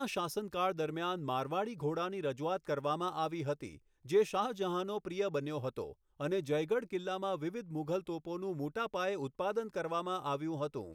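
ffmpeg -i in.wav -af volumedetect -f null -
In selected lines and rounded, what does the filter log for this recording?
mean_volume: -36.2 dB
max_volume: -19.2 dB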